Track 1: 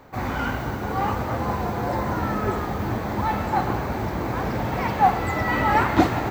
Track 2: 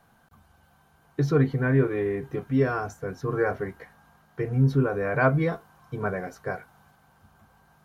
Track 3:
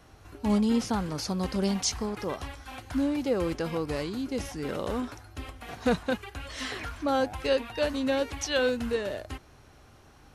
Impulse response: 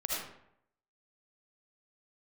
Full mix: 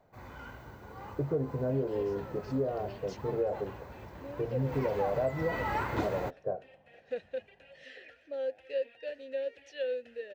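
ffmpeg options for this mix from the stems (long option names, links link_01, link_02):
-filter_complex "[0:a]aecho=1:1:2:0.3,volume=-12dB,afade=type=in:start_time=4.56:duration=0.22:silence=0.354813[link_01];[1:a]lowpass=frequency=600:width_type=q:width=4.9,volume=-9.5dB[link_02];[2:a]adynamicequalizer=threshold=0.00501:dfrequency=4300:dqfactor=0.73:tfrequency=4300:tqfactor=0.73:attack=5:release=100:ratio=0.375:range=2:mode=boostabove:tftype=bell,asplit=3[link_03][link_04][link_05];[link_03]bandpass=frequency=530:width_type=q:width=8,volume=0dB[link_06];[link_04]bandpass=frequency=1840:width_type=q:width=8,volume=-6dB[link_07];[link_05]bandpass=frequency=2480:width_type=q:width=8,volume=-9dB[link_08];[link_06][link_07][link_08]amix=inputs=3:normalize=0,adelay=1250,volume=-4.5dB[link_09];[link_01][link_02][link_09]amix=inputs=3:normalize=0,acompressor=threshold=-26dB:ratio=10"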